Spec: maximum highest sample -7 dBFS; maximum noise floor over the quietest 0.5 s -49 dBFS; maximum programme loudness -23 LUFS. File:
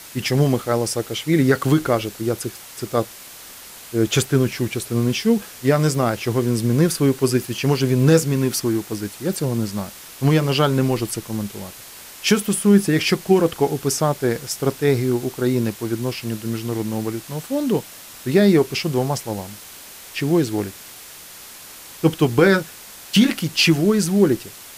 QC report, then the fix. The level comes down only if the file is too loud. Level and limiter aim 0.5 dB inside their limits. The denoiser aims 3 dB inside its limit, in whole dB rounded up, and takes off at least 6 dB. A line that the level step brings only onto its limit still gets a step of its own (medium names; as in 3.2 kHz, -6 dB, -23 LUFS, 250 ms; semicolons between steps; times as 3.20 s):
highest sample -4.0 dBFS: fail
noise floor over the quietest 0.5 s -40 dBFS: fail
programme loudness -20.0 LUFS: fail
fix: noise reduction 9 dB, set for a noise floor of -40 dBFS; trim -3.5 dB